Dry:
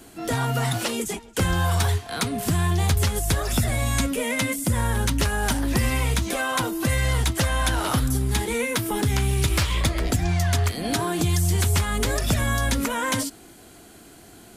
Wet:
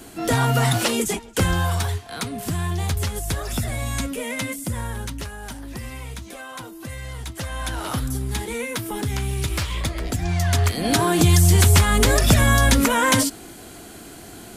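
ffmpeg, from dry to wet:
ffmpeg -i in.wav -af "volume=23.5dB,afade=type=out:start_time=1.12:duration=0.76:silence=0.398107,afade=type=out:start_time=4.49:duration=0.87:silence=0.375837,afade=type=in:start_time=7.18:duration=0.79:silence=0.375837,afade=type=in:start_time=10.12:duration=1.12:silence=0.316228" out.wav

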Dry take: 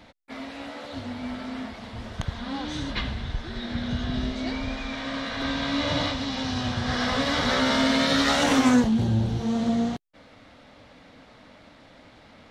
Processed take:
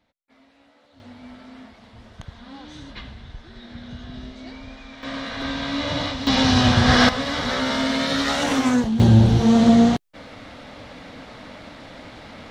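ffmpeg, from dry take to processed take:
ffmpeg -i in.wav -af "asetnsamples=nb_out_samples=441:pad=0,asendcmd='1 volume volume -8.5dB;5.03 volume volume 0.5dB;6.27 volume volume 11.5dB;7.09 volume volume -0.5dB;9 volume volume 10.5dB',volume=-19dB" out.wav

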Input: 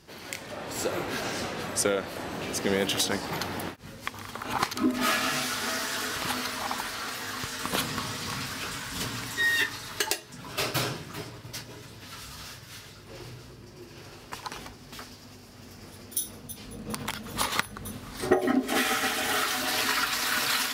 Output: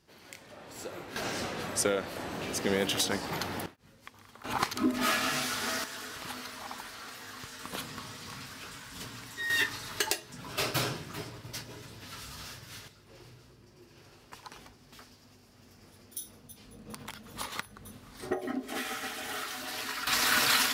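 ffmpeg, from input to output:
ffmpeg -i in.wav -af "asetnsamples=nb_out_samples=441:pad=0,asendcmd='1.16 volume volume -2.5dB;3.66 volume volume -15dB;4.44 volume volume -2.5dB;5.84 volume volume -10dB;9.5 volume volume -2dB;12.88 volume volume -10dB;20.07 volume volume 1.5dB',volume=-11.5dB" out.wav

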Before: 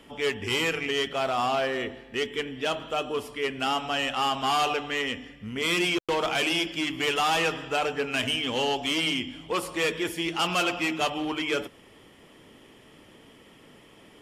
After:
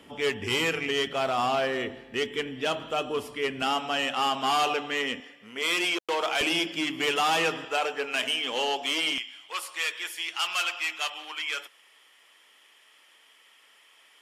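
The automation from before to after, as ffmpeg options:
ffmpeg -i in.wav -af "asetnsamples=nb_out_samples=441:pad=0,asendcmd='3.62 highpass f 180;5.2 highpass f 450;6.41 highpass f 170;7.65 highpass f 430;9.18 highpass f 1300',highpass=69" out.wav

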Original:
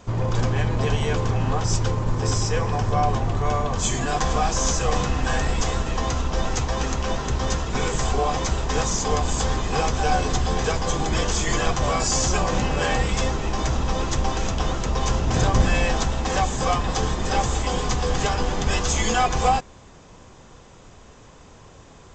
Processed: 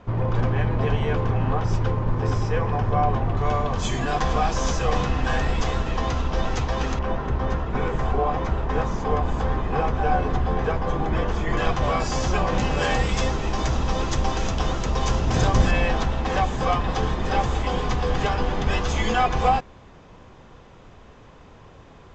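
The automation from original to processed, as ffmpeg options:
ffmpeg -i in.wav -af "asetnsamples=nb_out_samples=441:pad=0,asendcmd='3.37 lowpass f 4000;6.99 lowpass f 1800;11.57 lowpass f 3300;12.58 lowpass f 6200;15.71 lowpass f 3400',lowpass=2400" out.wav

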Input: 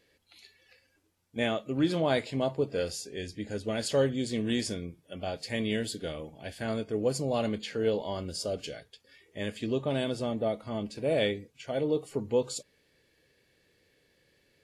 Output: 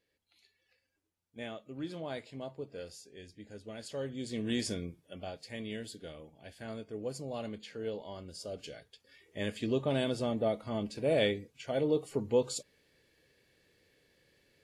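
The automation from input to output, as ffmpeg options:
ffmpeg -i in.wav -af "volume=8dB,afade=type=in:start_time=4:duration=0.8:silence=0.251189,afade=type=out:start_time=4.8:duration=0.6:silence=0.354813,afade=type=in:start_time=8.4:duration=1.01:silence=0.354813" out.wav

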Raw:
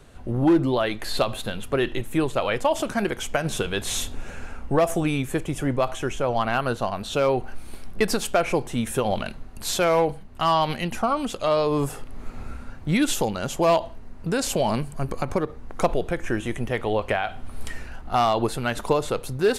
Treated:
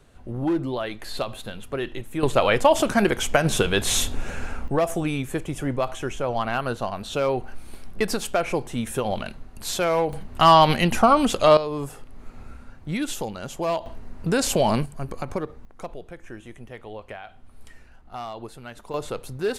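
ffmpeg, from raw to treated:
ffmpeg -i in.wav -af "asetnsamples=nb_out_samples=441:pad=0,asendcmd='2.23 volume volume 5dB;4.68 volume volume -2dB;10.13 volume volume 7dB;11.57 volume volume -6dB;13.86 volume volume 2.5dB;14.86 volume volume -4dB;15.65 volume volume -14dB;18.94 volume volume -5dB',volume=-5.5dB" out.wav

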